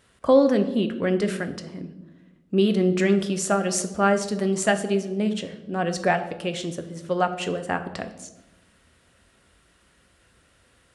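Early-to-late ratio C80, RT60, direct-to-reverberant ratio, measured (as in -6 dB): 14.0 dB, 1.0 s, 7.5 dB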